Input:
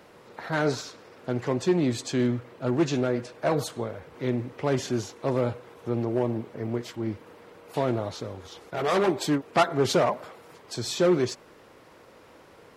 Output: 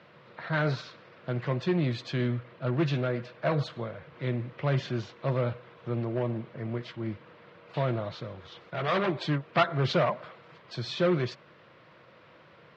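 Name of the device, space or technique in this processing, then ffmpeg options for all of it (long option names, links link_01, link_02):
guitar cabinet: -af "highpass=110,equalizer=frequency=140:width_type=q:width=4:gain=7,equalizer=frequency=270:width_type=q:width=4:gain=-10,equalizer=frequency=420:width_type=q:width=4:gain=-9,equalizer=frequency=820:width_type=q:width=4:gain=-8,lowpass=frequency=4000:width=0.5412,lowpass=frequency=4000:width=1.3066"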